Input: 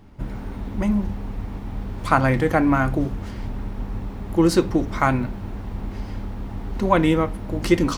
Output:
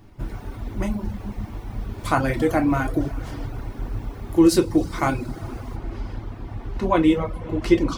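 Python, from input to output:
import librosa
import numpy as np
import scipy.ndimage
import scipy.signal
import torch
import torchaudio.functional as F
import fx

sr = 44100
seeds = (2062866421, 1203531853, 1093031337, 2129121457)

y = fx.dynamic_eq(x, sr, hz=1400.0, q=1.2, threshold_db=-34.0, ratio=4.0, max_db=-5)
y = fx.rev_double_slope(y, sr, seeds[0], early_s=0.36, late_s=3.8, knee_db=-17, drr_db=2.5)
y = fx.dereverb_blind(y, sr, rt60_s=0.59)
y = fx.high_shelf(y, sr, hz=6700.0, db=fx.steps((0.0, 6.0), (5.75, -7.0), (7.33, -12.0)))
y = F.gain(torch.from_numpy(y), -1.5).numpy()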